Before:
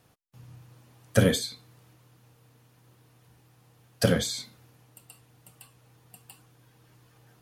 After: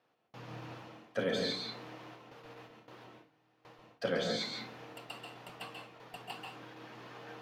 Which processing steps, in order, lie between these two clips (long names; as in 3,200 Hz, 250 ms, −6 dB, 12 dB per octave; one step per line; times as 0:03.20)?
high-pass filter 330 Hz 12 dB per octave
mains-hum notches 50/100/150/200/250/300/350/400/450 Hz
noise gate with hold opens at −54 dBFS
high-shelf EQ 8,700 Hz +7 dB
reversed playback
downward compressor 16 to 1, threshold −43 dBFS, peak gain reduction 25 dB
reversed playback
high-frequency loss of the air 240 metres
on a send: convolution reverb RT60 0.35 s, pre-delay 133 ms, DRR 2.5 dB
on the sum: level +14.5 dB